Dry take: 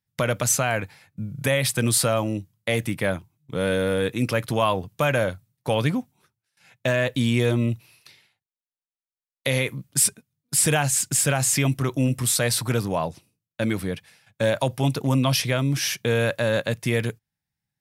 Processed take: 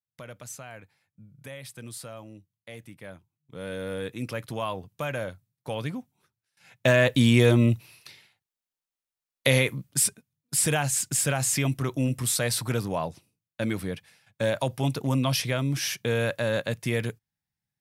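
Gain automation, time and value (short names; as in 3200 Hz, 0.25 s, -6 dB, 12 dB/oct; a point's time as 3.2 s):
3 s -19.5 dB
3.94 s -9.5 dB
5.99 s -9.5 dB
6.9 s +2.5 dB
9.5 s +2.5 dB
10.04 s -4 dB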